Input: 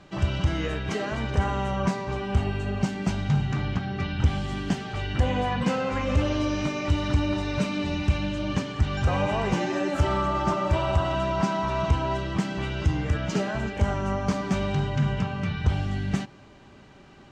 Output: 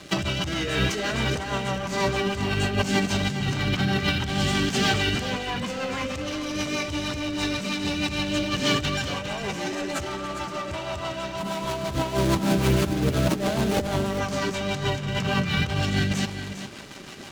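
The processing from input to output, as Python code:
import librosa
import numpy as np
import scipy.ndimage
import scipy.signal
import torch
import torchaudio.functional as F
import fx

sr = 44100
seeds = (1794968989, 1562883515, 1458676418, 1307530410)

y = fx.median_filter(x, sr, points=25, at=(11.37, 14.11))
y = fx.highpass(y, sr, hz=160.0, slope=6)
y = fx.high_shelf(y, sr, hz=3100.0, db=11.5)
y = fx.leveller(y, sr, passes=3)
y = fx.over_compress(y, sr, threshold_db=-23.0, ratio=-0.5)
y = fx.rotary(y, sr, hz=6.3)
y = y + 10.0 ** (-10.0 / 20.0) * np.pad(y, (int(404 * sr / 1000.0), 0))[:len(y)]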